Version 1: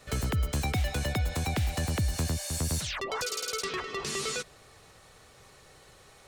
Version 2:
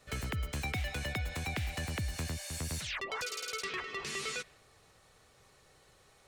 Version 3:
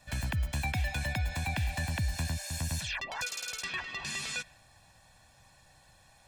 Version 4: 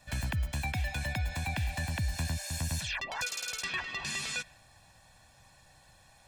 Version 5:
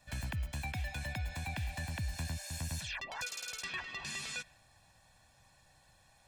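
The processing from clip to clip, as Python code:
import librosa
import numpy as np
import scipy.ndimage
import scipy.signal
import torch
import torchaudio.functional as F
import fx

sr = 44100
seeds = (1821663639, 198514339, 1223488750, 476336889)

y1 = fx.dynamic_eq(x, sr, hz=2200.0, q=1.1, threshold_db=-51.0, ratio=4.0, max_db=8)
y1 = y1 * librosa.db_to_amplitude(-8.0)
y2 = y1 + 0.89 * np.pad(y1, (int(1.2 * sr / 1000.0), 0))[:len(y1)]
y3 = fx.rider(y2, sr, range_db=10, speed_s=0.5)
y4 = fx.rattle_buzz(y3, sr, strikes_db=-35.0, level_db=-42.0)
y4 = y4 * librosa.db_to_amplitude(-5.5)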